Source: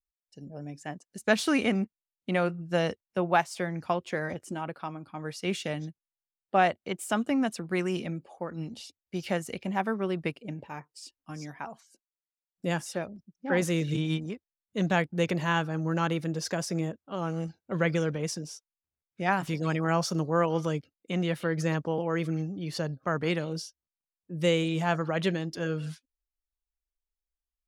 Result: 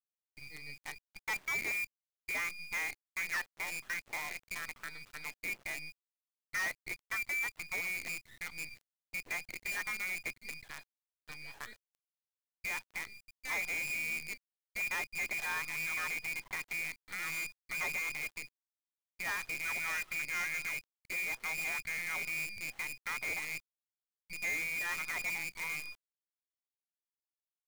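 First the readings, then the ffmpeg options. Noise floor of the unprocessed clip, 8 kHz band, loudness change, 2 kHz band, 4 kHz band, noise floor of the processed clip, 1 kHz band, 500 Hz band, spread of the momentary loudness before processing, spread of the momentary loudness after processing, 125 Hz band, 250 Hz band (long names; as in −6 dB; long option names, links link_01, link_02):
below −85 dBFS, −1.5 dB, −6.5 dB, +0.5 dB, −7.5 dB, below −85 dBFS, −14.0 dB, −24.0 dB, 15 LU, 12 LU, −27.0 dB, −27.5 dB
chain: -af "lowpass=frequency=2200:width_type=q:width=0.5098,lowpass=frequency=2200:width_type=q:width=0.6013,lowpass=frequency=2200:width_type=q:width=0.9,lowpass=frequency=2200:width_type=q:width=2.563,afreqshift=-2600,volume=22.5dB,asoftclip=hard,volume=-22.5dB,acrusher=bits=6:dc=4:mix=0:aa=0.000001,alimiter=level_in=4.5dB:limit=-24dB:level=0:latency=1:release=173,volume=-4.5dB,volume=-2.5dB"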